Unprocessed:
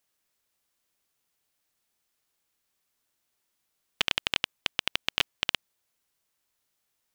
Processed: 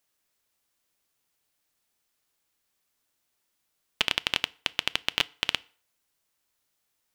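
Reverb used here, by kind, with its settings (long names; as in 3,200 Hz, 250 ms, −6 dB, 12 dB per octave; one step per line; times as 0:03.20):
feedback delay network reverb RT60 0.46 s, low-frequency decay 0.8×, high-frequency decay 0.8×, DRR 18.5 dB
level +1 dB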